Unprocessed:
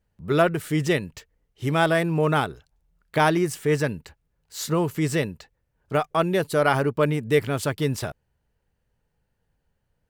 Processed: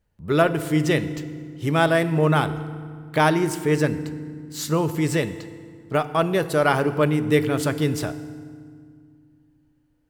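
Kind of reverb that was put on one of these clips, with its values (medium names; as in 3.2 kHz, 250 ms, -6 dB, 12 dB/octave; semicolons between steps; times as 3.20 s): FDN reverb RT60 2 s, low-frequency decay 1.6×, high-frequency decay 0.7×, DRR 11.5 dB; trim +1 dB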